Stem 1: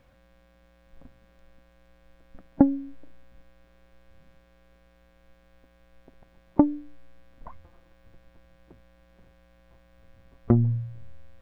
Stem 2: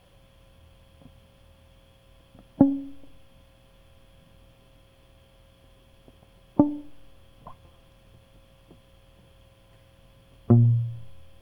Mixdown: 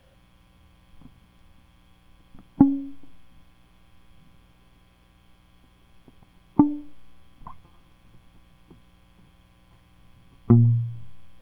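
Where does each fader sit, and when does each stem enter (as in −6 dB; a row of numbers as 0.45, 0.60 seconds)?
−0.5, −3.5 decibels; 0.00, 0.00 seconds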